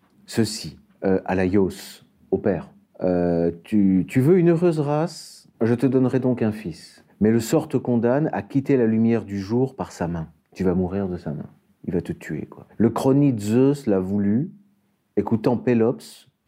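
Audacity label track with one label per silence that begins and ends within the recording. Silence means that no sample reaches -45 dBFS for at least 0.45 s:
14.570000	15.170000	silence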